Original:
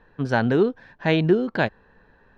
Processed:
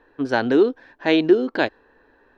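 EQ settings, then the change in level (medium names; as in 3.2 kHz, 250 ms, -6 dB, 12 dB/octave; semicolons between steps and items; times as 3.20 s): resonant low shelf 230 Hz -7.5 dB, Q 3; dynamic bell 4.8 kHz, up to +6 dB, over -42 dBFS, Q 0.94; 0.0 dB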